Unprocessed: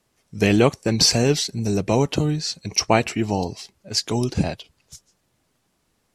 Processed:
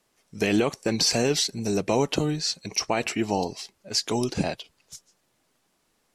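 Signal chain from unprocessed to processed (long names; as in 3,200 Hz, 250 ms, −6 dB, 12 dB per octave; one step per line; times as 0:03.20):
parametric band 76 Hz −11.5 dB 2.3 octaves
brickwall limiter −12 dBFS, peak gain reduction 9.5 dB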